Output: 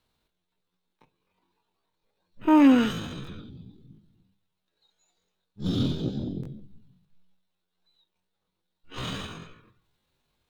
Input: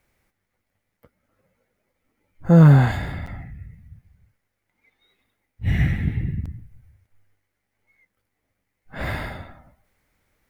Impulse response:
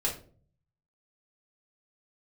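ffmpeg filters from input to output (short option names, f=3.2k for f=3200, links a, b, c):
-filter_complex "[0:a]asetrate=80880,aresample=44100,atempo=0.545254,bandreject=f=50:t=h:w=6,bandreject=f=100:t=h:w=6,bandreject=f=150:t=h:w=6,bandreject=f=200:t=h:w=6,asplit=2[a][b];[1:a]atrim=start_sample=2205[c];[b][c]afir=irnorm=-1:irlink=0,volume=-19.5dB[d];[a][d]amix=inputs=2:normalize=0,volume=-6.5dB"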